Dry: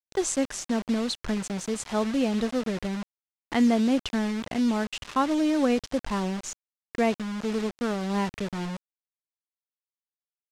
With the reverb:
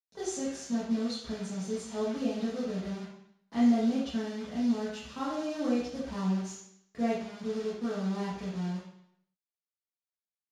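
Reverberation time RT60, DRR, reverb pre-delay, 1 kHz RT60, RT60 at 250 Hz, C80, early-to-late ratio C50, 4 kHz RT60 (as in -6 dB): 0.70 s, -11.5 dB, 3 ms, 0.70 s, 0.75 s, 5.0 dB, 1.5 dB, 0.70 s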